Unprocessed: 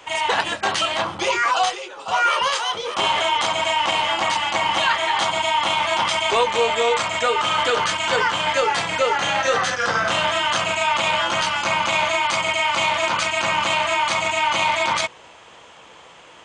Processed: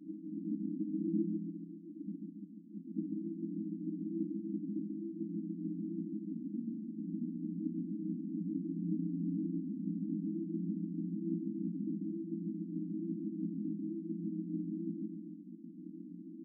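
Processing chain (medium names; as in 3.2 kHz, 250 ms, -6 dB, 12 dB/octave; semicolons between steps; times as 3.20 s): compression 5:1, threshold -29 dBFS, peak gain reduction 14 dB; FFT band-pass 170–340 Hz; feedback delay 139 ms, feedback 44%, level -4.5 dB; plate-style reverb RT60 1 s, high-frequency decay 0.85×, pre-delay 105 ms, DRR 7 dB; trim +11 dB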